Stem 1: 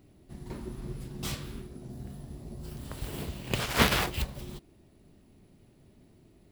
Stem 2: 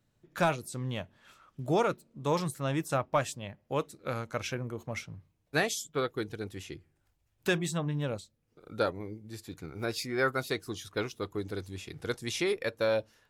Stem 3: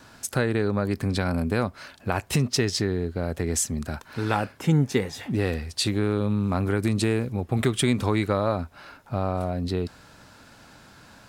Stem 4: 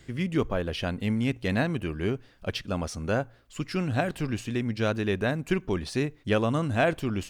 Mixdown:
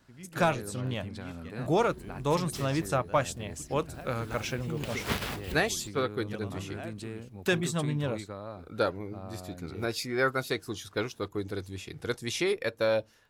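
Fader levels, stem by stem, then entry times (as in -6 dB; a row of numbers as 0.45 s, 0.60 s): -8.5 dB, +1.5 dB, -17.0 dB, -19.0 dB; 1.30 s, 0.00 s, 0.00 s, 0.00 s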